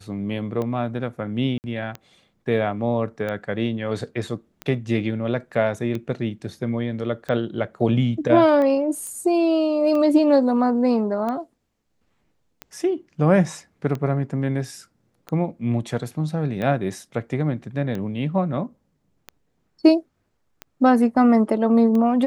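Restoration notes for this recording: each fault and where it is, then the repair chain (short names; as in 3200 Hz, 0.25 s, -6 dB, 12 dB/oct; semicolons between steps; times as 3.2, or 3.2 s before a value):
tick 45 rpm -17 dBFS
1.58–1.64 gap 59 ms
9.07 pop -20 dBFS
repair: de-click; interpolate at 1.58, 59 ms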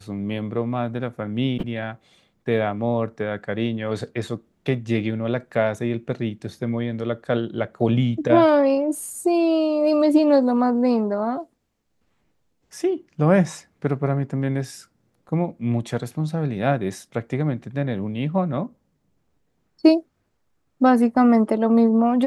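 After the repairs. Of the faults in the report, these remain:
none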